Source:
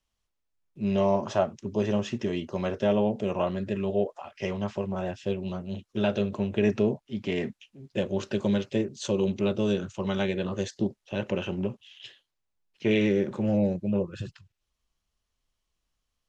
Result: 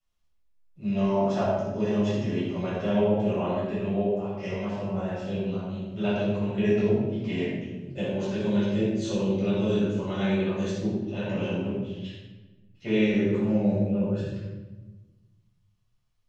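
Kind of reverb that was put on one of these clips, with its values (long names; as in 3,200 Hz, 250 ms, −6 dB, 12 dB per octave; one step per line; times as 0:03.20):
rectangular room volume 700 cubic metres, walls mixed, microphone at 6.8 metres
level −13 dB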